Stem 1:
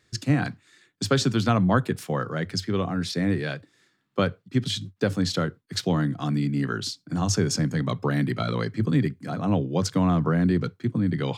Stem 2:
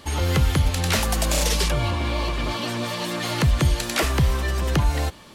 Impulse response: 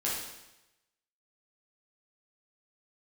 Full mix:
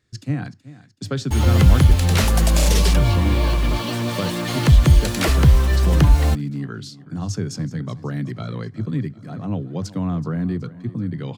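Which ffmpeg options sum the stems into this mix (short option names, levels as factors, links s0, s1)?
-filter_complex "[0:a]volume=0.447,asplit=2[s0][s1];[s1]volume=0.133[s2];[1:a]acrusher=bits=5:mix=0:aa=0.5,adelay=1250,volume=1[s3];[s2]aecho=0:1:376|752|1128|1504|1880|2256|2632:1|0.47|0.221|0.104|0.0488|0.0229|0.0108[s4];[s0][s3][s4]amix=inputs=3:normalize=0,lowshelf=f=240:g=8.5"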